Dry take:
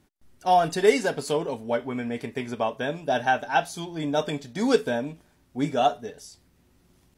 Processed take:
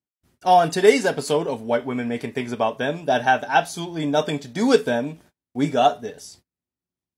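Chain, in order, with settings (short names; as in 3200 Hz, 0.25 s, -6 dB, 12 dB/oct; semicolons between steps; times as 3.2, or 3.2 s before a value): gate -53 dBFS, range -34 dB; HPF 76 Hz; gain +4.5 dB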